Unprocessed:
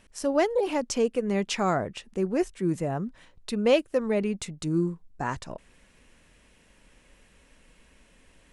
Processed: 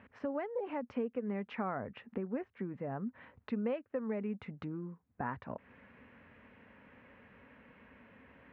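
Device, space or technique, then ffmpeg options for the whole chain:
bass amplifier: -af "acompressor=threshold=-40dB:ratio=4,highpass=frequency=84:width=0.5412,highpass=frequency=84:width=1.3066,equalizer=frequency=160:width_type=q:width=4:gain=-7,equalizer=frequency=240:width_type=q:width=4:gain=4,equalizer=frequency=340:width_type=q:width=4:gain=-8,equalizer=frequency=650:width_type=q:width=4:gain=-3,lowpass=frequency=2100:width=0.5412,lowpass=frequency=2100:width=1.3066,volume=4.5dB"

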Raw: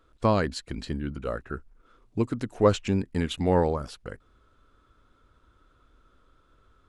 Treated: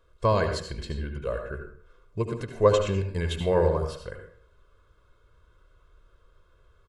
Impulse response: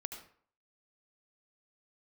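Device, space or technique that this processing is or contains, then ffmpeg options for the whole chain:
microphone above a desk: -filter_complex "[0:a]aecho=1:1:1.9:0.78[link_01];[1:a]atrim=start_sample=2205[link_02];[link_01][link_02]afir=irnorm=-1:irlink=0"

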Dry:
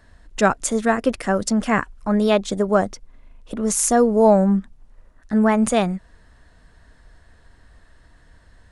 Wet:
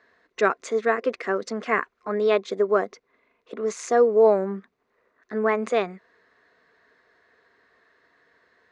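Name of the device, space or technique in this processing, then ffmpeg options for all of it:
phone earpiece: -af "highpass=380,equalizer=frequency=530:width_type=q:width=4:gain=-5,equalizer=frequency=1000:width_type=q:width=4:gain=5,equalizer=frequency=2100:width_type=q:width=4:gain=5,equalizer=frequency=3100:width_type=q:width=4:gain=-6,lowpass=frequency=4400:width=0.5412,lowpass=frequency=4400:width=1.3066,superequalizer=7b=2.51:9b=0.501:15b=2:16b=1.78,volume=-3.5dB"

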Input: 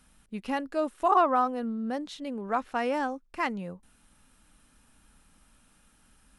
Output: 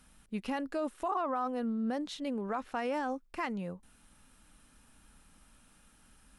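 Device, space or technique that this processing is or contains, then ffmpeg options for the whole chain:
stacked limiters: -af "alimiter=limit=-18dB:level=0:latency=1:release=488,alimiter=limit=-21.5dB:level=0:latency=1:release=64,alimiter=level_in=1dB:limit=-24dB:level=0:latency=1:release=36,volume=-1dB"

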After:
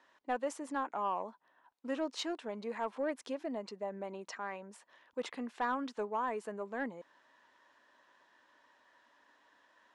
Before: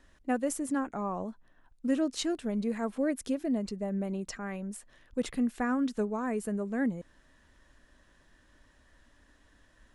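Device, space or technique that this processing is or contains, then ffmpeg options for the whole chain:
intercom: -af "highpass=450,lowpass=4900,equalizer=frequency=950:width_type=o:width=0.42:gain=9,asoftclip=type=tanh:threshold=-22.5dB,volume=-1.5dB"

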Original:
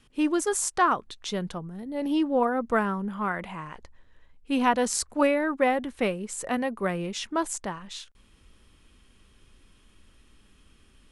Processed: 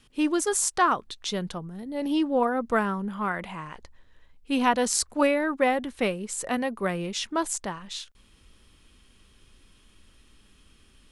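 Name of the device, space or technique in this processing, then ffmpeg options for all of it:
presence and air boost: -af "equalizer=frequency=4200:width_type=o:width=1.2:gain=3.5,highshelf=frequency=10000:gain=5"

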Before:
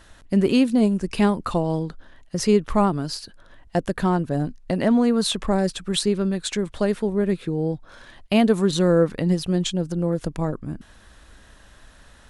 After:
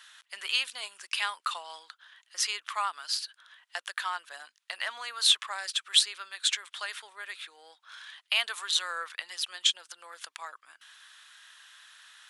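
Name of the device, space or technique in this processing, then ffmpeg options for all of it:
headphones lying on a table: -af "highpass=frequency=1200:width=0.5412,highpass=frequency=1200:width=1.3066,equalizer=frequency=3300:width_type=o:width=0.56:gain=6"

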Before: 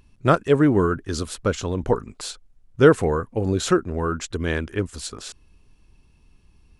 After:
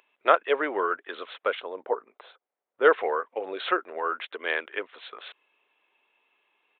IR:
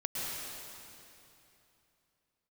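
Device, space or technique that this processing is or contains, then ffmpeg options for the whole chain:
musical greeting card: -filter_complex "[0:a]asplit=3[link_01][link_02][link_03];[link_01]afade=type=out:start_time=1.59:duration=0.02[link_04];[link_02]equalizer=frequency=3100:width_type=o:width=2.3:gain=-14,afade=type=in:start_time=1.59:duration=0.02,afade=type=out:start_time=2.84:duration=0.02[link_05];[link_03]afade=type=in:start_time=2.84:duration=0.02[link_06];[link_04][link_05][link_06]amix=inputs=3:normalize=0,asettb=1/sr,asplit=3[link_07][link_08][link_09];[link_07]atrim=end=4.024[link_10];[link_08]atrim=start=4.02:end=4.58,asetpts=PTS-STARTPTS,afade=type=in:duration=0.004:curve=qsin,afade=type=out:start_time=0.556:duration=0.004:curve=qsin,highpass=150[link_11];[link_09]atrim=start=4.576[link_12];[link_10][link_11]acrossfade=duration=0.004:curve1=hsin:curve2=qsin[link_13];[link_13][link_12]acrossfade=duration=0.004:curve1=qsin:curve2=hsin,aresample=8000,aresample=44100,highpass=frequency=510:width=0.5412,highpass=frequency=510:width=1.3066,equalizer=frequency=2100:width_type=o:width=0.41:gain=4.5"

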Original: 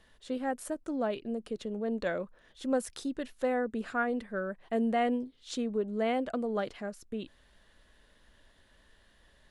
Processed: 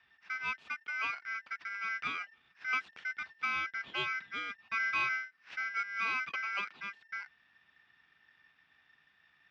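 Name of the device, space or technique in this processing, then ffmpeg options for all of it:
ring modulator pedal into a guitar cabinet: -af "aeval=exprs='val(0)*sgn(sin(2*PI*1800*n/s))':channel_layout=same,highpass=98,equalizer=frequency=110:width_type=q:width=4:gain=-6,equalizer=frequency=320:width_type=q:width=4:gain=-3,equalizer=frequency=540:width_type=q:width=4:gain=-4,equalizer=frequency=870:width_type=q:width=4:gain=3,equalizer=frequency=1500:width_type=q:width=4:gain=4,equalizer=frequency=2700:width_type=q:width=4:gain=7,lowpass=frequency=3800:width=0.5412,lowpass=frequency=3800:width=1.3066,volume=-6.5dB"

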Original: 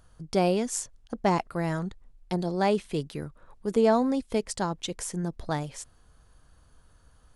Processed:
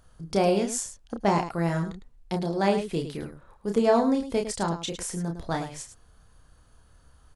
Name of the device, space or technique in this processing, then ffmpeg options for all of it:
slapback doubling: -filter_complex "[0:a]asplit=3[link_01][link_02][link_03];[link_02]adelay=30,volume=-4.5dB[link_04];[link_03]adelay=106,volume=-10dB[link_05];[link_01][link_04][link_05]amix=inputs=3:normalize=0"

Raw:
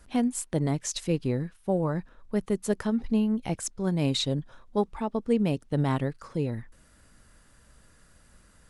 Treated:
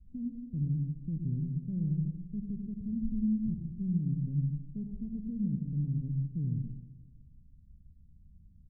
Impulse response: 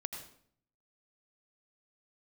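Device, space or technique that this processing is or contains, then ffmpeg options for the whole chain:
club heard from the street: -filter_complex "[0:a]aecho=1:1:158|316|474|632|790:0.133|0.0747|0.0418|0.0234|0.0131,alimiter=limit=-20.5dB:level=0:latency=1,lowpass=frequency=190:width=0.5412,lowpass=frequency=190:width=1.3066[link_01];[1:a]atrim=start_sample=2205[link_02];[link_01][link_02]afir=irnorm=-1:irlink=0,volume=2.5dB"

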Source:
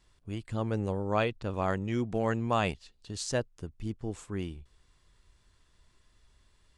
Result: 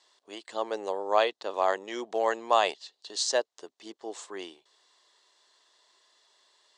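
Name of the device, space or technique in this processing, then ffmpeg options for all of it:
phone speaker on a table: -af "highpass=frequency=460:width=0.5412,highpass=frequency=460:width=1.3066,equalizer=frequency=500:width_type=q:width=4:gain=-4,equalizer=frequency=1400:width_type=q:width=4:gain=-8,equalizer=frequency=2400:width_type=q:width=4:gain=-9,equalizer=frequency=4000:width_type=q:width=4:gain=4,lowpass=frequency=7700:width=0.5412,lowpass=frequency=7700:width=1.3066,volume=8dB"

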